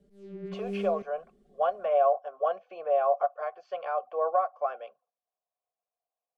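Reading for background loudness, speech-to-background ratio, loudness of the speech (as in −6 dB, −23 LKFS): −38.0 LKFS, 8.5 dB, −29.5 LKFS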